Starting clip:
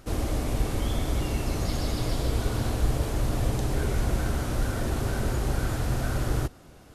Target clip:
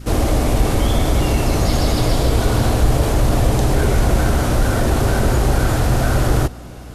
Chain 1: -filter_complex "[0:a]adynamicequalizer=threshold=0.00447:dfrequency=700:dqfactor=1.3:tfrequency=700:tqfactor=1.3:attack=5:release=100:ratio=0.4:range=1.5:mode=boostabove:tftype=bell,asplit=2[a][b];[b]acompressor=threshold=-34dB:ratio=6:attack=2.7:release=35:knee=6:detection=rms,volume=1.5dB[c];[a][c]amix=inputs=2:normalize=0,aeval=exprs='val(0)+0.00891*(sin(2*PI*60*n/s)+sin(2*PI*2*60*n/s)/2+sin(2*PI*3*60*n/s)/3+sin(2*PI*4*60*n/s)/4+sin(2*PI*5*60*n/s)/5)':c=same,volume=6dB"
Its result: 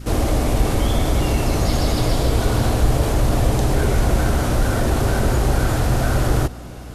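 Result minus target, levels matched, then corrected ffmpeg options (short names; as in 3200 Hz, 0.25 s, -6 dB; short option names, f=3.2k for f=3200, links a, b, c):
compressor: peak gain reduction +6.5 dB
-filter_complex "[0:a]adynamicequalizer=threshold=0.00447:dfrequency=700:dqfactor=1.3:tfrequency=700:tqfactor=1.3:attack=5:release=100:ratio=0.4:range=1.5:mode=boostabove:tftype=bell,asplit=2[a][b];[b]acompressor=threshold=-26dB:ratio=6:attack=2.7:release=35:knee=6:detection=rms,volume=1.5dB[c];[a][c]amix=inputs=2:normalize=0,aeval=exprs='val(0)+0.00891*(sin(2*PI*60*n/s)+sin(2*PI*2*60*n/s)/2+sin(2*PI*3*60*n/s)/3+sin(2*PI*4*60*n/s)/4+sin(2*PI*5*60*n/s)/5)':c=same,volume=6dB"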